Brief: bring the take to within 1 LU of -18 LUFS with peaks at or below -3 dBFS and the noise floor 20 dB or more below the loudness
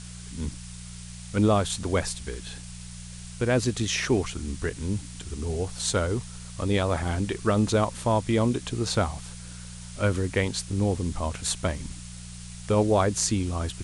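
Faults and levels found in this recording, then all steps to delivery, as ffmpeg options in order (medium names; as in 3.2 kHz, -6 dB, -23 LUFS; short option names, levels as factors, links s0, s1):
hum 60 Hz; highest harmonic 180 Hz; hum level -39 dBFS; noise floor -41 dBFS; noise floor target -47 dBFS; loudness -27.0 LUFS; peak level -7.5 dBFS; loudness target -18.0 LUFS
-> -af "bandreject=f=60:t=h:w=4,bandreject=f=120:t=h:w=4,bandreject=f=180:t=h:w=4"
-af "afftdn=nr=6:nf=-41"
-af "volume=2.82,alimiter=limit=0.708:level=0:latency=1"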